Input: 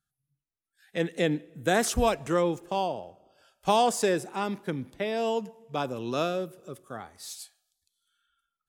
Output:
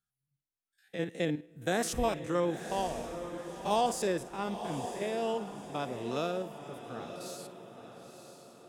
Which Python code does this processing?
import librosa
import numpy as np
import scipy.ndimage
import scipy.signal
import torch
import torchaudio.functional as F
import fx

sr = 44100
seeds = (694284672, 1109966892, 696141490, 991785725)

y = fx.spec_steps(x, sr, hold_ms=50)
y = fx.echo_diffused(y, sr, ms=958, feedback_pct=43, wet_db=-9)
y = y * librosa.db_to_amplitude(-4.5)